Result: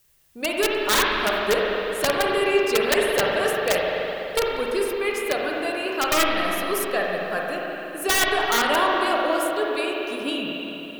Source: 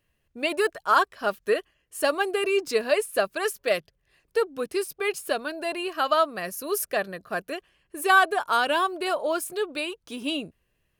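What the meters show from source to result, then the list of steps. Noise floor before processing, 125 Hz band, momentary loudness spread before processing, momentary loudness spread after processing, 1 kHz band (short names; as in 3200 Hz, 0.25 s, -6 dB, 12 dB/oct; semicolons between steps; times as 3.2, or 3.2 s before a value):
-74 dBFS, +9.5 dB, 10 LU, 8 LU, +1.0 dB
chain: wrapped overs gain 14 dB; added noise blue -62 dBFS; spring tank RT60 3.4 s, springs 42/55 ms, chirp 45 ms, DRR -2.5 dB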